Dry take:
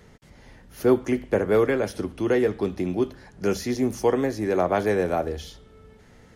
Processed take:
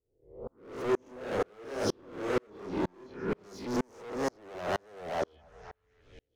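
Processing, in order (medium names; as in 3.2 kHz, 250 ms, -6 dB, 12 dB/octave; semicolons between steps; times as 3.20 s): reverse spectral sustain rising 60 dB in 1.22 s; level-controlled noise filter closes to 380 Hz, open at -16.5 dBFS; bass shelf 140 Hz -7 dB; compression 6:1, threshold -22 dBFS, peak gain reduction 9 dB; touch-sensitive phaser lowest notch 180 Hz, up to 2.7 kHz, full sweep at -22.5 dBFS; hard clipper -31 dBFS, distortion -6 dB; 0.86–3.59 s: doubling 29 ms -4.5 dB; repeats whose band climbs or falls 266 ms, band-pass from 710 Hz, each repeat 0.7 oct, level -11 dB; sawtooth tremolo in dB swelling 2.1 Hz, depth 39 dB; trim +7 dB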